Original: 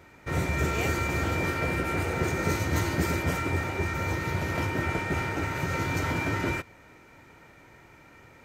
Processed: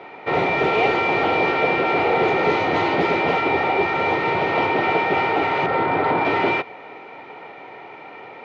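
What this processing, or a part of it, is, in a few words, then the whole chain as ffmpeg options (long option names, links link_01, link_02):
overdrive pedal into a guitar cabinet: -filter_complex "[0:a]asettb=1/sr,asplit=3[link_01][link_02][link_03];[link_01]atrim=end=5.664[link_04];[link_02]atrim=start=5.66:end=6.25,asetpts=PTS-STARTPTS,afade=type=in:duration=0.004:curve=qsin,afade=type=out:start_time=0.586:duration=0.004:curve=qsin,lowpass=frequency=2000:width=0.5412,lowpass=frequency=2000:width=1.3066[link_05];[link_03]atrim=start=6.246[link_06];[link_04][link_05]acrossfade=duration=0.004:curve1=hsin:curve2=qsin[link_07];[link_07][link_06]acrossfade=duration=0.004:curve1=qsin:curve2=hsin,highpass=98,highshelf=frequency=8400:gain=-6.5,asplit=2[link_08][link_09];[link_09]highpass=frequency=720:poles=1,volume=20dB,asoftclip=type=tanh:threshold=-13.5dB[link_10];[link_08][link_10]amix=inputs=2:normalize=0,lowpass=frequency=5100:poles=1,volume=-6dB,highpass=110,equalizer=frequency=430:width_type=q:width=4:gain=8,equalizer=frequency=770:width_type=q:width=4:gain=10,equalizer=frequency=1600:width_type=q:width=4:gain=-10,lowpass=frequency=3700:width=0.5412,lowpass=frequency=3700:width=1.3066,volume=2dB"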